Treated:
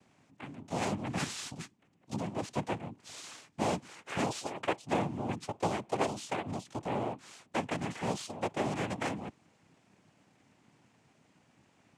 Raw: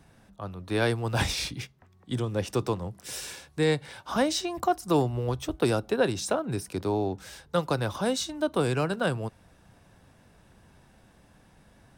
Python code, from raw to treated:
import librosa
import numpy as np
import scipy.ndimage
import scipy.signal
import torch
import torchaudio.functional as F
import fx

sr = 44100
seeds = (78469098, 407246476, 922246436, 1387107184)

y = fx.self_delay(x, sr, depth_ms=0.18)
y = fx.noise_vocoder(y, sr, seeds[0], bands=4)
y = y * librosa.db_to_amplitude(-6.5)